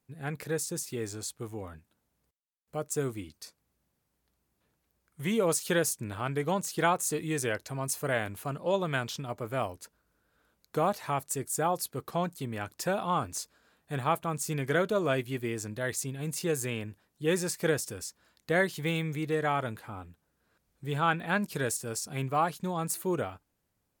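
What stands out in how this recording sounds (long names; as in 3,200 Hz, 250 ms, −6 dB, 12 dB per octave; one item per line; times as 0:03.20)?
background noise floor −79 dBFS
spectral slope −4.5 dB per octave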